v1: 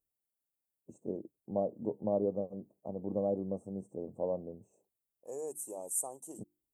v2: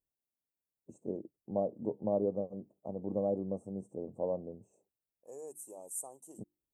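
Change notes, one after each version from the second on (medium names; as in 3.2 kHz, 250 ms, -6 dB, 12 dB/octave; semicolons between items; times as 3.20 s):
second voice -6.0 dB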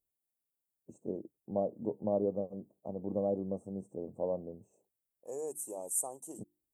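second voice +7.0 dB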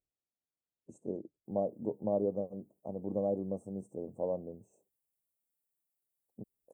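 second voice: entry +1.45 s; master: add FFT filter 700 Hz 0 dB, 2.4 kHz -4 dB, 5.5 kHz +2 dB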